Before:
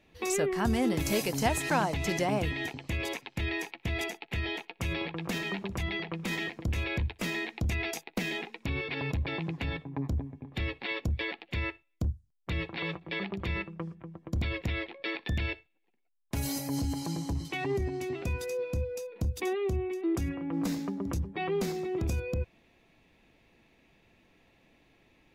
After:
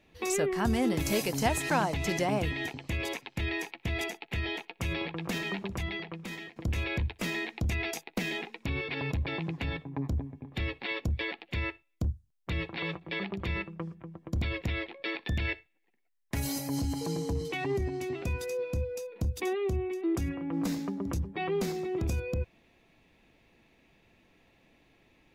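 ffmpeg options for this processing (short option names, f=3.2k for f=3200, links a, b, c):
-filter_complex "[0:a]asettb=1/sr,asplit=3[a][b][c];[a]atrim=end=15.454[d];[b]atrim=start=15.45:end=16.4,asetpts=PTS-STARTPTS,afade=t=in:d=0.004:c=qsin,afade=t=out:st=0.946:d=0.004:c=qsin,equalizer=f=1.9k:t=o:w=0.31:g=10[e];[c]atrim=start=16.396[f];[d][e]acrossfade=d=0.004:c1=hsin:c2=qsin[g];[g][f]acrossfade=d=0.004:c1=qsin:c2=hsin,asettb=1/sr,asplit=3[h][i][j];[h]atrim=end=17.014[k];[i]atrim=start=17.01:end=17.52,asetpts=PTS-STARTPTS,afade=t=in:d=0.004:c=qsin,afade=t=out:st=0.506:d=0.004:c=qsin,aeval=exprs='val(0)+0.0178*sin(2*PI*460*n/s)':c=same[l];[j]atrim=start=17.516[m];[k][l]acrossfade=d=0.004:c1=hsin:c2=qsin[n];[n][m]acrossfade=d=0.004:c1=qsin:c2=hsin,asplit=2[o][p];[o]atrim=end=6.56,asetpts=PTS-STARTPTS,afade=t=out:st=5.67:d=0.89:silence=0.237137[q];[p]atrim=start=6.56,asetpts=PTS-STARTPTS,afade=t=in:d=0.004:c=hsin:silence=0.237137[r];[q][r]concat=n=2:v=0:a=1"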